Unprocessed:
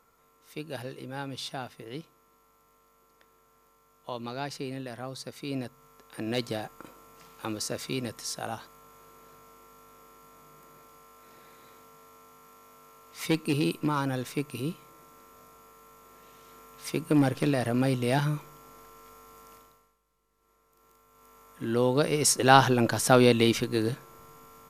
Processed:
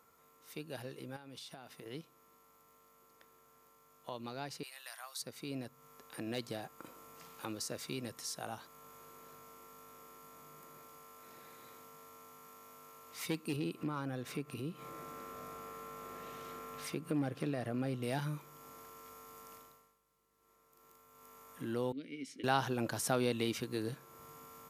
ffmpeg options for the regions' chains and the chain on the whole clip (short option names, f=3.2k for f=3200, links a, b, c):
-filter_complex "[0:a]asettb=1/sr,asplit=3[a][b][c];[a]atrim=end=1.164[d];[b]atrim=start=1.16:end=1.86,asetpts=PTS-STARTPTS,afade=t=in:d=0.004:c=qsin,afade=t=out:st=0.696:d=0.004:c=qsin,equalizer=f=83:w=1.1:g=-7.5,acompressor=threshold=-42dB:ratio=12:attack=3.2:release=140:knee=1:detection=peak[e];[c]atrim=start=1.856[f];[d][e]acrossfade=d=0.004:c1=hsin:c2=qsin[g];[g][f]acrossfade=d=0.004:c1=qsin:c2=hsin,asettb=1/sr,asplit=3[h][i][j];[h]atrim=end=4.634[k];[i]atrim=start=4.63:end=5.22,asetpts=PTS-STARTPTS,afade=t=in:d=0.004:c=qsin,afade=t=out:st=0.586:d=0.004:c=qsin,highpass=f=910:w=0.5412,highpass=f=910:w=1.3066,highshelf=f=5.4k:g=11[l];[j]atrim=start=5.216[m];[k][l]acrossfade=d=0.004:c1=hsin:c2=qsin[n];[n][m]acrossfade=d=0.004:c1=qsin:c2=hsin,asettb=1/sr,asplit=3[o][p][q];[o]atrim=end=13.564[r];[p]atrim=start=13.56:end=18.03,asetpts=PTS-STARTPTS,afade=t=in:d=0.004:c=qsin,afade=t=out:st=4.466:d=0.004:c=qsin,highshelf=f=4k:g=-10,acompressor=mode=upward:threshold=-29dB:ratio=2.5:attack=3.2:release=140:knee=2.83:detection=peak,bandreject=f=930:w=10[s];[q]atrim=start=18.026[t];[r][s]acrossfade=d=0.004:c1=hsin:c2=qsin[u];[u][t]acrossfade=d=0.004:c1=qsin:c2=hsin,asettb=1/sr,asplit=3[v][w][x];[v]atrim=end=21.924[y];[w]atrim=start=21.92:end=22.44,asetpts=PTS-STARTPTS,afade=t=in:d=0.004:c=qsin,afade=t=out:st=0.516:d=0.004:c=qsin,asplit=3[z][aa][ab];[z]bandpass=f=270:t=q:w=8,volume=0dB[ac];[aa]bandpass=f=2.29k:t=q:w=8,volume=-6dB[ad];[ab]bandpass=f=3.01k:t=q:w=8,volume=-9dB[ae];[ac][ad][ae]amix=inputs=3:normalize=0,acompressor=mode=upward:threshold=-45dB:ratio=2.5:attack=3.2:release=140:knee=2.83:detection=peak[af];[x]atrim=start=22.436[ag];[y][af]acrossfade=d=0.004:c1=hsin:c2=qsin[ah];[ah][ag]acrossfade=d=0.004:c1=qsin:c2=hsin,highpass=76,highshelf=f=11k:g=5.5,acompressor=threshold=-47dB:ratio=1.5,volume=-2dB"